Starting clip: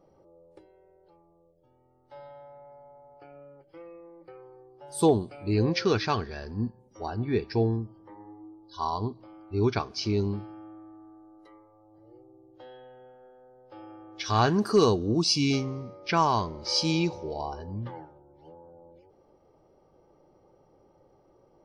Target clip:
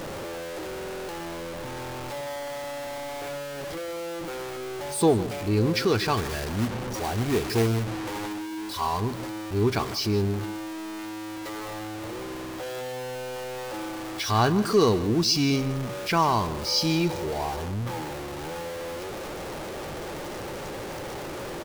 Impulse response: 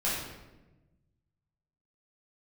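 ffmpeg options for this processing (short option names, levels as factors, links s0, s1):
-filter_complex "[0:a]aeval=exprs='val(0)+0.5*0.0335*sgn(val(0))':c=same,asettb=1/sr,asplit=3[s0][s1][s2];[s0]atrim=end=6.174[s3];[s1]atrim=start=6.17:end=8.33,asetpts=PTS-STARTPTS,afade=t=in:d=0.004:c=qsin,afade=t=out:st=2.156:d=0.004:c=qsin,acrusher=bits=2:mode=log:mix=0:aa=0.000001[s4];[s2]atrim=start=8.326[s5];[s3][s4]acrossfade=d=0.004:c1=hsin:c2=qsin[s6];[s6][s5]acrossfade=d=0.004:c1=qsin:c2=hsin,asplit=2[s7][s8];[s8]adelay=157.4,volume=0.178,highshelf=f=4000:g=-3.54[s9];[s7][s9]amix=inputs=2:normalize=0"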